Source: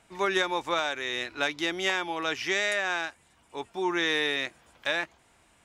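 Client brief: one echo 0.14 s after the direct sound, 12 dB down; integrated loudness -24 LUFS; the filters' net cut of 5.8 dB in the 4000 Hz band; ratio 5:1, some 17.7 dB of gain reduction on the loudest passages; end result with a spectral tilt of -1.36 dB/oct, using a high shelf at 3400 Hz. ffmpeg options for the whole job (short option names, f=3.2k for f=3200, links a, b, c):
-af "highshelf=f=3.4k:g=-5.5,equalizer=f=4k:t=o:g=-3.5,acompressor=threshold=-44dB:ratio=5,aecho=1:1:140:0.251,volume=22dB"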